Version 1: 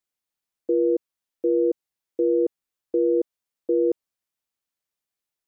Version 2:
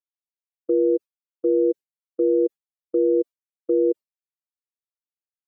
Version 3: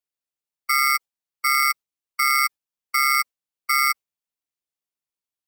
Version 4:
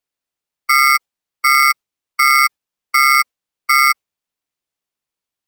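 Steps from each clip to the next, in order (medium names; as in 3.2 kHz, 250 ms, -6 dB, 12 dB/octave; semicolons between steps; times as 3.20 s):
spectral contrast enhancement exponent 2.4; expander -27 dBFS; trim +2 dB
high-pass 460 Hz 12 dB/octave; polarity switched at an audio rate 1.7 kHz; trim +3.5 dB
treble shelf 5.9 kHz -5.5 dB; trim +8.5 dB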